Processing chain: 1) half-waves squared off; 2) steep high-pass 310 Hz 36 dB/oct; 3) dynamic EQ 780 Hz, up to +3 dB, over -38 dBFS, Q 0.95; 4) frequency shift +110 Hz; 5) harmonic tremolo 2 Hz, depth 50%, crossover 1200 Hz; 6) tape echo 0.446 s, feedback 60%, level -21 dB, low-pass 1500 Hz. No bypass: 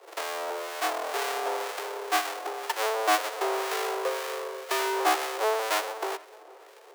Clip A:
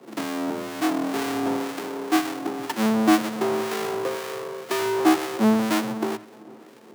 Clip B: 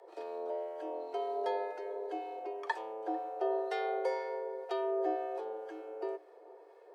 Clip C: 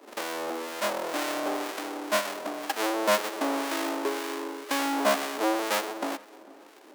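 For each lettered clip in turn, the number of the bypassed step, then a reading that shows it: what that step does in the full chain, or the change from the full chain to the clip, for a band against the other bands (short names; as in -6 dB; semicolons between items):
2, 250 Hz band +20.5 dB; 1, distortion -6 dB; 4, 250 Hz band +10.5 dB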